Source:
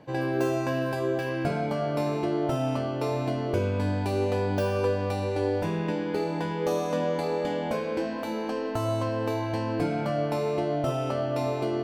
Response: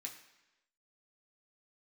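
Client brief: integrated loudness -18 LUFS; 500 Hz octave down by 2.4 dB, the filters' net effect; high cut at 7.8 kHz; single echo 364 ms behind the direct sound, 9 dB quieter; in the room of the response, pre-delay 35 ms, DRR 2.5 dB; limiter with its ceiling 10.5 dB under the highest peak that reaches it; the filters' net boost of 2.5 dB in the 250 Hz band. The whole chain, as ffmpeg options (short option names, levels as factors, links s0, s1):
-filter_complex "[0:a]lowpass=7800,equalizer=f=250:t=o:g=5,equalizer=f=500:t=o:g=-4.5,alimiter=limit=0.0668:level=0:latency=1,aecho=1:1:364:0.355,asplit=2[s0][s1];[1:a]atrim=start_sample=2205,adelay=35[s2];[s1][s2]afir=irnorm=-1:irlink=0,volume=1.12[s3];[s0][s3]amix=inputs=2:normalize=0,volume=4.22"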